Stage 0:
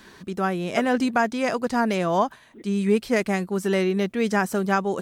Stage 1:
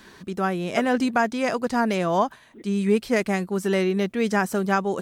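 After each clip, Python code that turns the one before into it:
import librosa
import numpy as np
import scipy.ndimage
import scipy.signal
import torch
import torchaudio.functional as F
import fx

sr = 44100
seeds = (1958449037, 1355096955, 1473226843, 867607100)

y = x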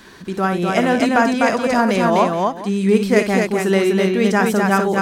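y = fx.echo_multitap(x, sr, ms=(57, 250, 424), db=(-9.5, -3.0, -16.5))
y = y * librosa.db_to_amplitude(5.0)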